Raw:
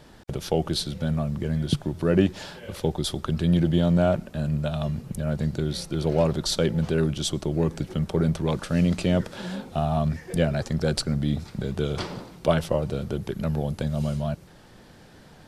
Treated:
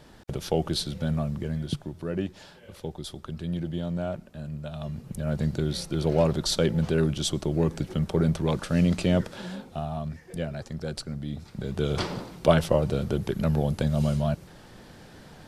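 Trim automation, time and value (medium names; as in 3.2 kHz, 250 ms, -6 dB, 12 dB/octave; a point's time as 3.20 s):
1.24 s -1.5 dB
2.12 s -10 dB
4.61 s -10 dB
5.38 s -0.5 dB
9.18 s -0.5 dB
10.01 s -9 dB
11.31 s -9 dB
11.98 s +2 dB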